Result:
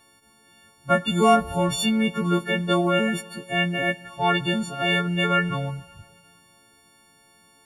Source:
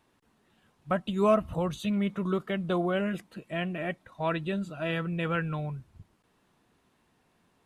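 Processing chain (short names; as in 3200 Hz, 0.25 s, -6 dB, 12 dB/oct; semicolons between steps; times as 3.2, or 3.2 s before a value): frequency quantiser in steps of 4 st; spring tank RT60 2.3 s, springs 52/56 ms, chirp 50 ms, DRR 17 dB; gain +6.5 dB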